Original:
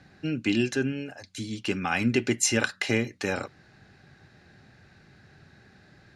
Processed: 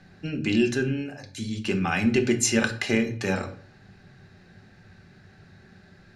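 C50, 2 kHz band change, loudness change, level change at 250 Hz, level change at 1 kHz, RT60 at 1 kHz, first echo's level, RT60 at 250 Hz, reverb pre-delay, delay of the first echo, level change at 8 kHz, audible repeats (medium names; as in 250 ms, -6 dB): 12.5 dB, +1.0 dB, +2.0 dB, +3.0 dB, +1.0 dB, 0.50 s, no echo, 0.60 s, 4 ms, no echo, +0.5 dB, no echo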